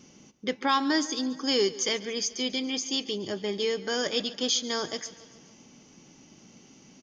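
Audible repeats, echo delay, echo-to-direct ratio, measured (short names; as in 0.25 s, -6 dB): 4, 0.141 s, -16.0 dB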